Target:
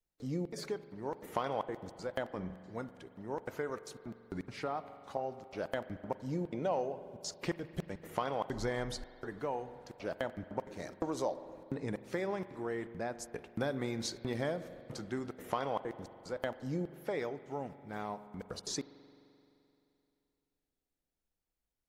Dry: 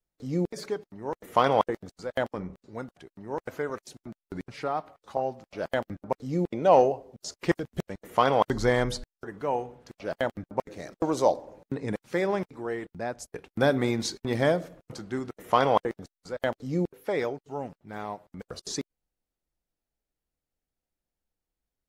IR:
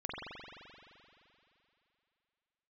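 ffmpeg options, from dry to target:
-filter_complex "[0:a]acompressor=threshold=-31dB:ratio=3,asplit=2[a][b];[1:a]atrim=start_sample=2205[c];[b][c]afir=irnorm=-1:irlink=0,volume=-15.5dB[d];[a][d]amix=inputs=2:normalize=0,volume=-4dB"

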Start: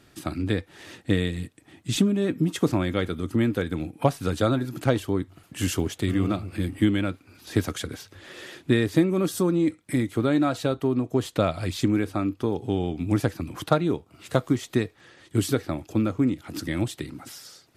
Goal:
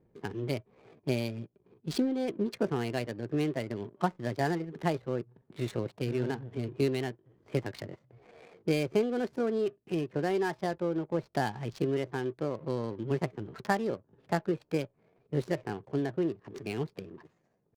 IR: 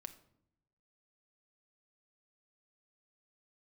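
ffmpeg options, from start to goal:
-af "asetrate=57191,aresample=44100,atempo=0.771105,adynamicsmooth=sensitivity=7.5:basefreq=510,volume=-7.5dB"

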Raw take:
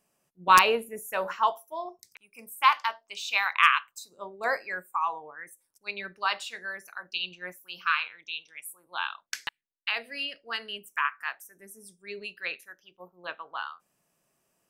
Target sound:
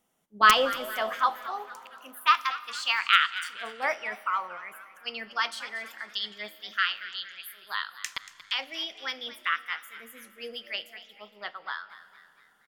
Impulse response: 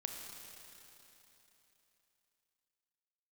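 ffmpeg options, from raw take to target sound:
-filter_complex "[0:a]asetrate=51156,aresample=44100,asplit=5[a][b][c][d][e];[b]adelay=232,afreqshift=110,volume=-15dB[f];[c]adelay=464,afreqshift=220,volume=-21.4dB[g];[d]adelay=696,afreqshift=330,volume=-27.8dB[h];[e]adelay=928,afreqshift=440,volume=-34.1dB[i];[a][f][g][h][i]amix=inputs=5:normalize=0,asplit=2[j][k];[1:a]atrim=start_sample=2205,lowpass=8.9k,lowshelf=f=270:g=10.5[l];[k][l]afir=irnorm=-1:irlink=0,volume=-12dB[m];[j][m]amix=inputs=2:normalize=0,volume=-1.5dB"

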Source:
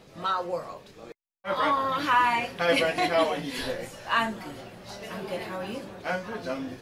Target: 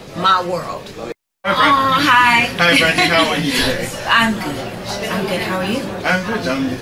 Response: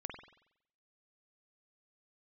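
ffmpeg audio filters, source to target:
-filter_complex "[0:a]acrossover=split=290|1200|3000[a][b][c][d];[b]acompressor=threshold=-40dB:ratio=6[e];[a][e][c][d]amix=inputs=4:normalize=0,alimiter=level_in=18.5dB:limit=-1dB:release=50:level=0:latency=1,volume=-1dB"

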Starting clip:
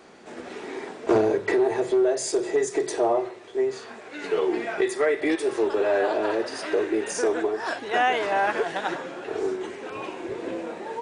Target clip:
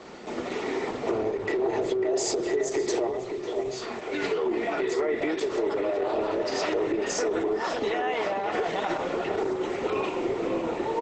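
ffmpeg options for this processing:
-filter_complex "[0:a]lowpass=7.7k,asplit=3[a][b][c];[a]afade=t=out:st=1.56:d=0.02[d];[b]bandreject=f=46.79:t=h:w=4,bandreject=f=93.58:t=h:w=4,bandreject=f=140.37:t=h:w=4,afade=t=in:st=1.56:d=0.02,afade=t=out:st=2.35:d=0.02[e];[c]afade=t=in:st=2.35:d=0.02[f];[d][e][f]amix=inputs=3:normalize=0,asettb=1/sr,asplit=3[g][h][i];[g]atrim=end=3.074[j];[h]atrim=start=3.07:end=3.82,asetpts=PTS-STARTPTS,afade=t=in:d=0.004:c=qsin,afade=t=out:st=0.746:d=0.004:c=qsin,acrossover=split=160|3000[k][l][m];[l]acompressor=threshold=-36dB:ratio=10[n];[k][n][m]amix=inputs=3:normalize=0[o];[i]atrim=start=3.816[p];[j][o]acrossfade=d=0.004:c1=hsin:c2=qsin[q];[q][p]acrossfade=d=0.004:c1=qsin:c2=hsin,asettb=1/sr,asplit=3[r][s][t];[r]atrim=end=4.424[u];[s]atrim=start=4.42:end=5.17,asetpts=PTS-STARTPTS,afade=t=in:d=0.004:c=qsin,afade=t=out:st=0.746:d=0.004:c=qsin,highshelf=f=2.9k:g=-2.5[v];[t]atrim=start=5.166[w];[u][v]acrossfade=d=0.004:c1=hsin:c2=qsin[x];[x][w]acrossfade=d=0.004:c1=qsin:c2=hsin,alimiter=limit=-20.5dB:level=0:latency=1:release=28,acompressor=threshold=-31dB:ratio=6,asuperstop=centerf=1600:order=12:qfactor=6.9,asplit=2[y][z];[z]adelay=548,lowpass=f=1.3k:p=1,volume=-5dB,asplit=2[aa][ab];[ab]adelay=548,lowpass=f=1.3k:p=1,volume=0.34,asplit=2[ac][ad];[ad]adelay=548,lowpass=f=1.3k:p=1,volume=0.34,asplit=2[ae][af];[af]adelay=548,lowpass=f=1.3k:p=1,volume=0.34[ag];[y][aa][ac][ae][ag]amix=inputs=5:normalize=0,volume=7dB" -ar 48000 -c:a libopus -b:a 12k

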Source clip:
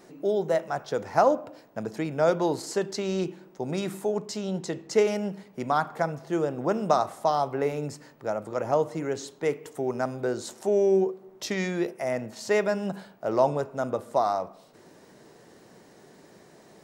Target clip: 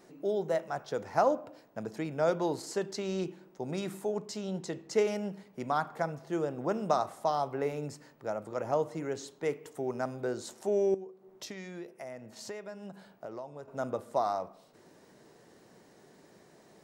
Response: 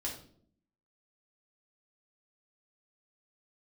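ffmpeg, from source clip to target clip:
-filter_complex "[0:a]asettb=1/sr,asplit=3[a][b][c];[a]atrim=end=10.944[d];[b]atrim=start=10.94:end=13.68,asetpts=PTS-STARTPTS,afade=t=in:d=0.004:c=qsin,afade=t=out:st=2.736:d=0.004:c=qsin,acompressor=threshold=-35dB:ratio=6[e];[c]atrim=start=13.676[f];[d][e]acrossfade=d=0.004:c1=hsin:c2=qsin[g];[g][f]acrossfade=d=0.004:c1=qsin:c2=hsin,volume=-5.5dB"

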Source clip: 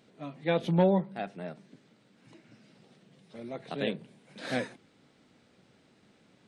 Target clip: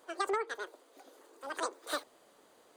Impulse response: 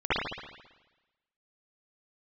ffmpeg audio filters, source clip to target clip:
-af "bandreject=f=2.3k:w=7.2,asetrate=103194,aresample=44100,acompressor=threshold=-30dB:ratio=5"

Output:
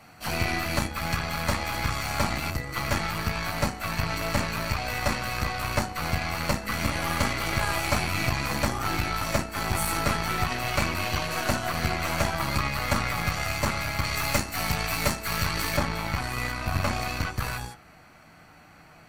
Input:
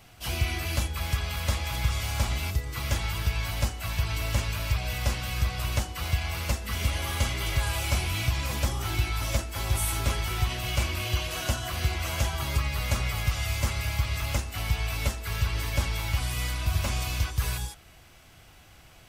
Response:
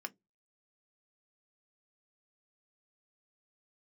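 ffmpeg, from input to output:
-filter_complex "[0:a]asetnsamples=n=441:p=0,asendcmd='14.04 highshelf g 3.5;15.77 highshelf g -8.5',highshelf=f=3.5k:g=-4[a];[1:a]atrim=start_sample=2205,asetrate=36162,aresample=44100[b];[a][b]afir=irnorm=-1:irlink=0,aeval=exprs='0.15*(cos(1*acos(clip(val(0)/0.15,-1,1)))-cos(1*PI/2))+0.00473*(cos(7*acos(clip(val(0)/0.15,-1,1)))-cos(7*PI/2))+0.0119*(cos(8*acos(clip(val(0)/0.15,-1,1)))-cos(8*PI/2))':c=same,volume=8dB"

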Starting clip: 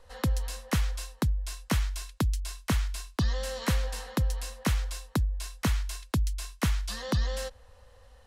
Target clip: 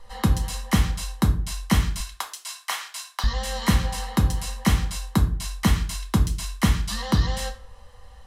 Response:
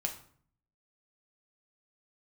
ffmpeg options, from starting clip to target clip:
-filter_complex "[0:a]asettb=1/sr,asplit=3[a][b][c];[a]atrim=end=2.004[d];[b]atrim=start=2:end=3.24,asetpts=PTS-STARTPTS,afade=t=in:d=0.004:c=qsin,afade=t=out:st=1.236:d=0.004:c=qsin,highpass=f=730:w=0.5412,highpass=f=730:w=1.3066[e];[c]atrim=start=3.236[f];[d][e]acrossfade=d=0.004:c1=hsin:c2=qsin[g];[g][f]acrossfade=d=0.004:c1=qsin:c2=hsin[h];[1:a]atrim=start_sample=2205,afade=t=out:st=0.41:d=0.01,atrim=end_sample=18522,asetrate=57330,aresample=44100[i];[h][i]afir=irnorm=-1:irlink=0,volume=7dB"

